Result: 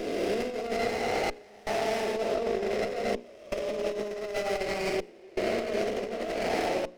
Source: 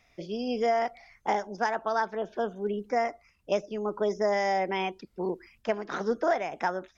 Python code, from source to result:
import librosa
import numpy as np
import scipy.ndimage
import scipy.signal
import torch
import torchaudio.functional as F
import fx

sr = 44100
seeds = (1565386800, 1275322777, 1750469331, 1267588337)

y = fx.spec_swells(x, sr, rise_s=2.21)
y = 10.0 ** (-22.5 / 20.0) * np.tanh(y / 10.0 ** (-22.5 / 20.0))
y = scipy.signal.sosfilt(scipy.signal.cheby1(3, 1.0, [770.0, 2000.0], 'bandstop', fs=sr, output='sos'), y)
y = y + 10.0 ** (-12.5 / 20.0) * np.pad(y, (int(115 * sr / 1000.0), 0))[:len(y)]
y = fx.rev_schroeder(y, sr, rt60_s=2.8, comb_ms=30, drr_db=0.5)
y = fx.step_gate(y, sr, bpm=81, pattern='xxxxxxx..x', floor_db=-24.0, edge_ms=4.5)
y = scipy.signal.sosfilt(scipy.signal.butter(4, 250.0, 'highpass', fs=sr, output='sos'), y)
y = fx.peak_eq(y, sr, hz=760.0, db=-10.0, octaves=0.46)
y = fx.hum_notches(y, sr, base_hz=60, count=9)
y = fx.over_compress(y, sr, threshold_db=-32.0, ratio=-0.5)
y = fx.running_max(y, sr, window=9)
y = F.gain(torch.from_numpy(y), 3.5).numpy()